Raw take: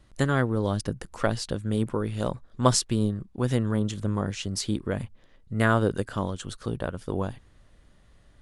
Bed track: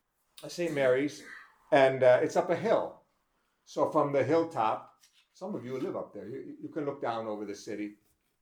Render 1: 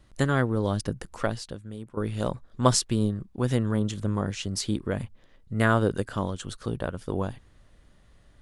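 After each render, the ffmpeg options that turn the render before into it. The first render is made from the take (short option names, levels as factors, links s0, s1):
-filter_complex "[0:a]asplit=2[s0][s1];[s0]atrim=end=1.97,asetpts=PTS-STARTPTS,afade=t=out:st=1.13:d=0.84:c=qua:silence=0.177828[s2];[s1]atrim=start=1.97,asetpts=PTS-STARTPTS,afade=t=in:d=0.004:c=hsin:silence=0.177828[s3];[s2][s3]concat=n=2:v=0:a=1"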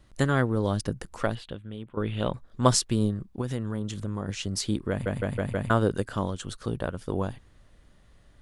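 -filter_complex "[0:a]asettb=1/sr,asplit=3[s0][s1][s2];[s0]atrim=end=1.354[s3];[s1]atrim=start=1.35:end=2.34,asetpts=PTS-STARTPTS,afade=t=in:d=0.004:c=qsin,afade=t=out:st=0.986:d=0.004:c=qsin,highshelf=f=4300:t=q:w=3:g=-10[s4];[s2]atrim=start=2.336[s5];[s3][s4]acrossfade=d=0.004:c1=hsin:c2=qsin[s6];[s6][s5]acrossfade=d=0.004:c1=qsin:c2=hsin,asettb=1/sr,asplit=3[s7][s8][s9];[s7]atrim=end=3.414[s10];[s8]atrim=start=3.41:end=4.29,asetpts=PTS-STARTPTS,afade=t=in:d=0.004:c=qsin,afade=t=out:st=0.876:d=0.004:c=qsin,acompressor=threshold=0.0316:ratio=2:attack=3.2:release=140:knee=1:detection=peak[s11];[s9]atrim=start=4.286[s12];[s10][s11]acrossfade=d=0.004:c1=hsin:c2=qsin[s13];[s13][s12]acrossfade=d=0.004:c1=qsin:c2=hsin,asplit=6[s14][s15][s16][s17][s18][s19];[s14]atrim=end=5.062[s20];[s15]atrim=start=4.898:end=5.062[s21];[s16]atrim=start=4.898:end=5.062[s22];[s17]atrim=start=4.898:end=5.062[s23];[s18]atrim=start=4.898:end=5.062[s24];[s19]atrim=start=5.698[s25];[s20][s21]acrossfade=d=0.004:c1=hsin:c2=hsin[s26];[s26][s22]acrossfade=d=0.004:c1=hsin:c2=hsin[s27];[s27][s23]acrossfade=d=0.004:c1=hsin:c2=hsin[s28];[s28][s24]acrossfade=d=0.004:c1=hsin:c2=hsin[s29];[s29][s25]acrossfade=d=0.004:c1=hsin:c2=hsin"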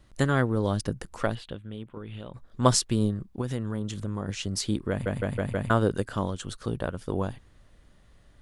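-filter_complex "[0:a]asplit=3[s0][s1][s2];[s0]afade=t=out:st=1.83:d=0.02[s3];[s1]acompressor=threshold=0.02:ratio=16:attack=3.2:release=140:knee=1:detection=peak,afade=t=in:st=1.83:d=0.02,afade=t=out:st=2.35:d=0.02[s4];[s2]afade=t=in:st=2.35:d=0.02[s5];[s3][s4][s5]amix=inputs=3:normalize=0"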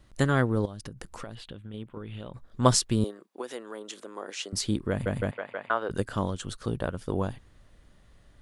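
-filter_complex "[0:a]asettb=1/sr,asplit=3[s0][s1][s2];[s0]atrim=end=0.654[s3];[s1]atrim=start=0.65:end=1.74,asetpts=PTS-STARTPTS,afade=t=in:d=0.004:c=qsin,afade=t=out:st=1.086:d=0.004:c=qsin,acompressor=threshold=0.0178:ratio=10:attack=3.2:release=140:knee=1:detection=peak[s4];[s2]atrim=start=1.736[s5];[s3][s4]acrossfade=d=0.004:c1=hsin:c2=qsin[s6];[s6][s5]acrossfade=d=0.004:c1=qsin:c2=hsin,asettb=1/sr,asplit=3[s7][s8][s9];[s7]atrim=end=3.044[s10];[s8]atrim=start=3.04:end=4.53,asetpts=PTS-STARTPTS,afade=t=in:d=0.004:c=qsin,afade=t=out:st=1.486:d=0.004:c=qsin,highpass=f=360:w=0.5412,highpass=f=360:w=1.3066[s11];[s9]atrim=start=4.526[s12];[s10][s11]acrossfade=d=0.004:c1=hsin:c2=qsin[s13];[s13][s12]acrossfade=d=0.004:c1=qsin:c2=hsin,asplit=3[s14][s15][s16];[s14]afade=t=out:st=5.3:d=0.02[s17];[s15]highpass=650,lowpass=2700,afade=t=in:st=5.3:d=0.02,afade=t=out:st=5.89:d=0.02[s18];[s16]afade=t=in:st=5.89:d=0.02[s19];[s17][s18][s19]amix=inputs=3:normalize=0"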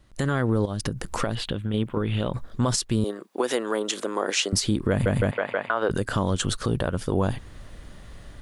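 -af "dynaudnorm=f=120:g=3:m=5.01,alimiter=limit=0.237:level=0:latency=1:release=69"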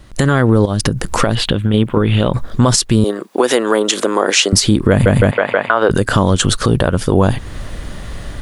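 -filter_complex "[0:a]asplit=2[s0][s1];[s1]acompressor=threshold=0.0282:ratio=6,volume=1.12[s2];[s0][s2]amix=inputs=2:normalize=0,alimiter=level_in=2.99:limit=0.891:release=50:level=0:latency=1"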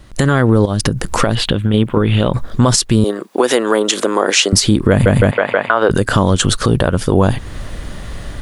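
-af anull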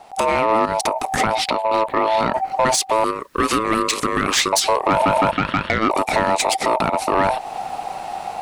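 -af "aeval=exprs='val(0)*sin(2*PI*770*n/s)':c=same,asoftclip=type=tanh:threshold=0.355"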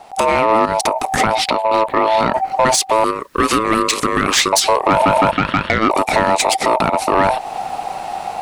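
-af "volume=1.5"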